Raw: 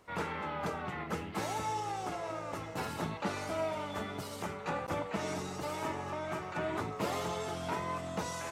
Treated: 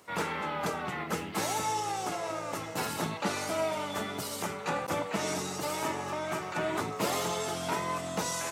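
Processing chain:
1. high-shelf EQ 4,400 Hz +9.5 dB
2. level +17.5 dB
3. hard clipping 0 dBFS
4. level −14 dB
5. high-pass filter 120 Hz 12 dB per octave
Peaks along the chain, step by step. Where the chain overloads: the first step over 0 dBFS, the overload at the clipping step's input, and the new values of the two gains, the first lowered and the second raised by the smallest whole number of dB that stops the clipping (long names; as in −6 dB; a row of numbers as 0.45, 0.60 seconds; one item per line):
−21.0, −3.5, −3.5, −17.5, −17.5 dBFS
no step passes full scale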